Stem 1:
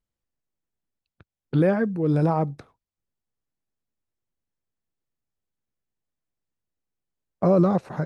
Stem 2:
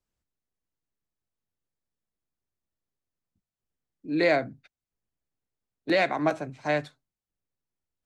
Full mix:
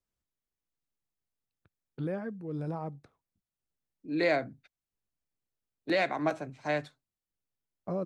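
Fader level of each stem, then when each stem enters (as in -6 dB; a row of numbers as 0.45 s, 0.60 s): -14.5 dB, -4.5 dB; 0.45 s, 0.00 s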